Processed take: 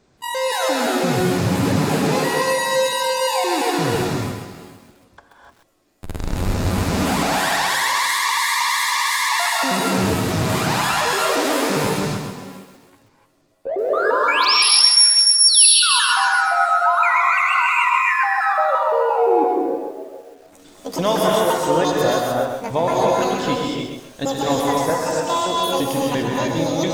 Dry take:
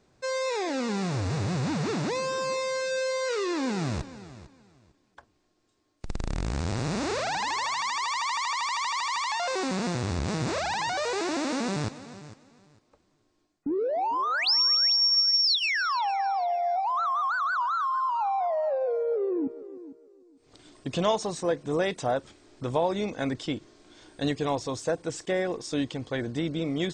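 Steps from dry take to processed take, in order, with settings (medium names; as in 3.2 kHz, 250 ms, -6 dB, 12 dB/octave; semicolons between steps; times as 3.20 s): pitch shift switched off and on +10.5 st, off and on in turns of 172 ms; gated-style reverb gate 320 ms rising, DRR -2.5 dB; bit-crushed delay 131 ms, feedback 35%, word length 9-bit, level -6 dB; trim +5 dB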